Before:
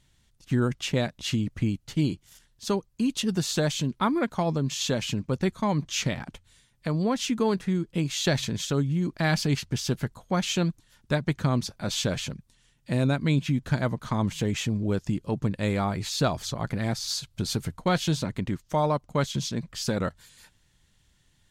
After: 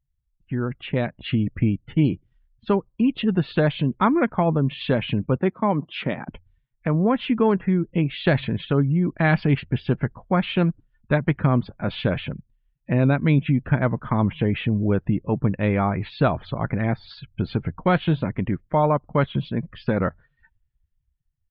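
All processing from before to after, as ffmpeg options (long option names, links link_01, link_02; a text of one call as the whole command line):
ffmpeg -i in.wav -filter_complex "[0:a]asettb=1/sr,asplit=3[link_01][link_02][link_03];[link_01]atrim=end=5.384[link_04];[link_02]atrim=start=5.38:end=6.28,asetpts=PTS-STARTPTS,afade=type=in:duration=0.004:curve=qsin,afade=type=out:start_time=0.896:duration=0.004:curve=qsin,highpass=200,equalizer=frequency=2200:width_type=o:width=1.3:gain=-4[link_05];[link_03]atrim=start=6.276[link_06];[link_04][link_05]acrossfade=duration=0.004:curve1=hsin:curve2=qsin[link_07];[link_07][link_06]acrossfade=duration=0.004:curve1=qsin:curve2=hsin,lowpass=frequency=2800:width=0.5412,lowpass=frequency=2800:width=1.3066,afftdn=noise_reduction=27:noise_floor=-49,dynaudnorm=framelen=220:gausssize=9:maxgain=10.5dB,volume=-3.5dB" out.wav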